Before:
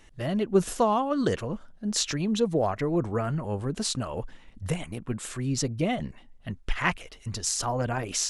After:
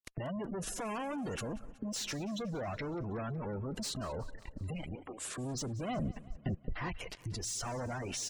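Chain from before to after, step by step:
spectral magnitudes quantised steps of 15 dB
0:00.93–0:01.52: high-shelf EQ 3,100 Hz +12 dB
fuzz pedal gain 42 dB, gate −46 dBFS
downward compressor 5 to 1, threshold −42 dBFS, peak gain reduction 24 dB
gate on every frequency bin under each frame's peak −20 dB strong
0:04.95–0:05.38: elliptic high-pass filter 280 Hz
0:05.88–0:06.89: tilt shelving filter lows +5.5 dB, about 1,200 Hz
repeating echo 185 ms, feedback 58%, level −20 dB

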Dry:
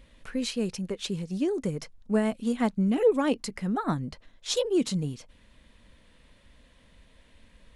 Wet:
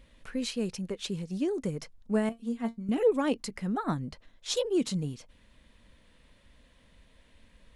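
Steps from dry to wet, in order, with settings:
0:02.29–0:02.89: tuned comb filter 230 Hz, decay 0.15 s, harmonics all, mix 90%
level −2.5 dB

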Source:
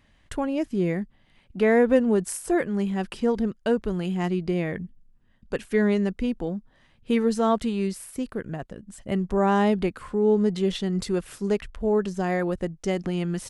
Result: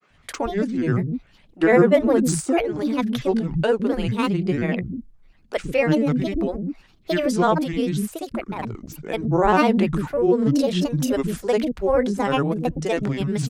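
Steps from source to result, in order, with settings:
multiband delay without the direct sound highs, lows 130 ms, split 290 Hz
granular cloud 100 ms, grains 20 per second, spray 30 ms, pitch spread up and down by 7 semitones
level +6.5 dB

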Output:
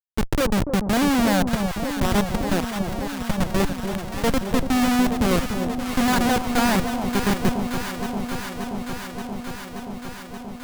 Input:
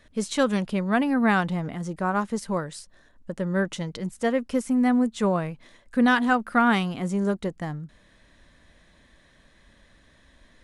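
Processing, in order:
comparator with hysteresis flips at −22 dBFS
delay that swaps between a low-pass and a high-pass 289 ms, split 920 Hz, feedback 89%, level −6.5 dB
level +7 dB

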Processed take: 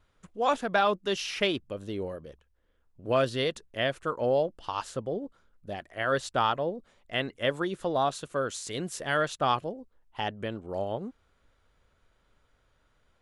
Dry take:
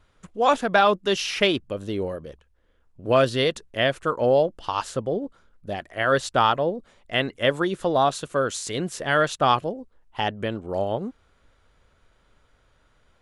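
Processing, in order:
0:08.71–0:09.17: high-shelf EQ 5,700 Hz +6.5 dB
level −6.5 dB

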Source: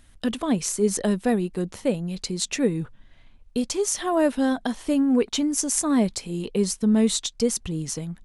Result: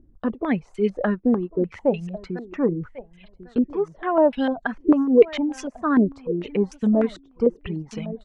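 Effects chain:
repeating echo 1,097 ms, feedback 18%, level −14.5 dB
reverb reduction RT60 1.1 s
low-pass on a step sequencer 6.7 Hz 340–2,700 Hz

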